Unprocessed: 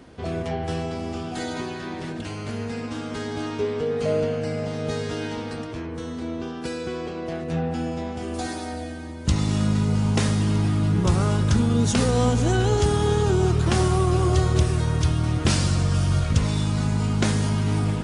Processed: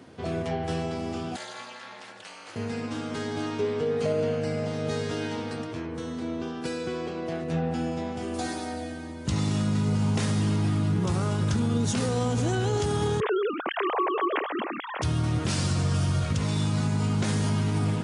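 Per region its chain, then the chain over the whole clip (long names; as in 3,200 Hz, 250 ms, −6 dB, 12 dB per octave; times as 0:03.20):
0:01.36–0:02.56: high-pass filter 780 Hz + ring modulation 130 Hz
0:13.20–0:15.02: three sine waves on the formant tracks + high-pass filter 570 Hz
whole clip: high-pass filter 87 Hz 24 dB per octave; brickwall limiter −16 dBFS; level −1.5 dB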